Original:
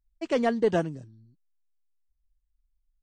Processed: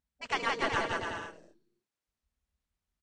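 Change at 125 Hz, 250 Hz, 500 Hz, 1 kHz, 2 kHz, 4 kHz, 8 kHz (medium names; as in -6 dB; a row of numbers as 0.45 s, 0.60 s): -10.0 dB, -13.0 dB, -11.0 dB, +1.5 dB, +5.5 dB, +5.5 dB, no reading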